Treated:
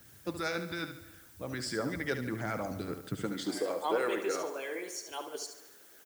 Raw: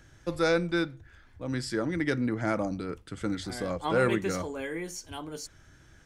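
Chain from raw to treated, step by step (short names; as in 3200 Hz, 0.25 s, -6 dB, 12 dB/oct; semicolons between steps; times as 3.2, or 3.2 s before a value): high-pass sweep 100 Hz -> 410 Hz, 3.04–3.63; in parallel at +2 dB: limiter -22 dBFS, peak gain reduction 11.5 dB; on the sum: added noise blue -48 dBFS; harmonic-percussive split harmonic -13 dB; feedback echo 72 ms, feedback 42%, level -9 dB; on a send at -20 dB: reverb RT60 1.2 s, pre-delay 0.186 s; on the sum: gain -6.5 dB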